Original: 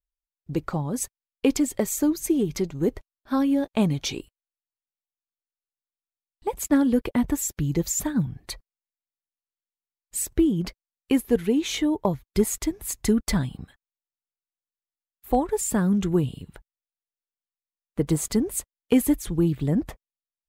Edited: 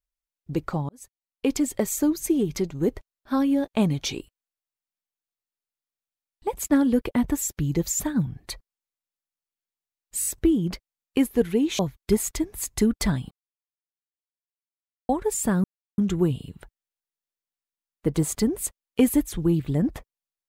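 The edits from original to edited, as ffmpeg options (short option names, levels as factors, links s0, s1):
-filter_complex "[0:a]asplit=9[s0][s1][s2][s3][s4][s5][s6][s7][s8];[s0]atrim=end=0.89,asetpts=PTS-STARTPTS,afade=t=out:st=0.886:d=0.004:c=hsin[s9];[s1]atrim=start=0.89:end=10.222,asetpts=PTS-STARTPTS,afade=t=in:d=0.81[s10];[s2]atrim=start=10.198:end=10.222[s11];[s3]atrim=start=10.198:end=10.222[s12];[s4]atrim=start=10.198:end=11.732[s13];[s5]atrim=start=12.058:end=13.58,asetpts=PTS-STARTPTS,afade=t=out:st=1.518:d=0.004:c=hsin[s14];[s6]atrim=start=13.58:end=15.36,asetpts=PTS-STARTPTS,volume=0[s15];[s7]atrim=start=15.36:end=15.91,asetpts=PTS-STARTPTS,afade=t=in:d=0.004:c=hsin,afade=t=out:st=0.546:d=0.004:c=hsin,apad=pad_dur=0.34[s16];[s8]atrim=start=15.91,asetpts=PTS-STARTPTS,afade=t=in:d=0.004:c=hsin[s17];[s9][s10]concat=n=2:v=0:a=1[s18];[s18][s11]acrossfade=d=0.004:c1=hsin:c2=hsin[s19];[s19][s12]acrossfade=d=0.004:c1=hsin:c2=hsin[s20];[s20][s13]acrossfade=d=0.004:c1=hsin:c2=hsin[s21];[s14][s15][s16][s17]concat=n=4:v=0:a=1[s22];[s21][s22]acrossfade=d=0.004:c1=hsin:c2=hsin"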